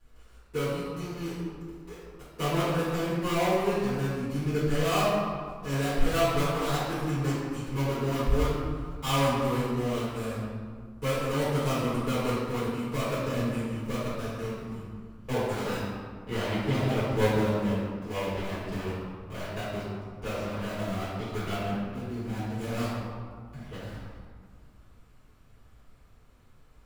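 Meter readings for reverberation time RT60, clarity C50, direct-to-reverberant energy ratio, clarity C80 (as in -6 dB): 1.9 s, -2.5 dB, -13.0 dB, 0.0 dB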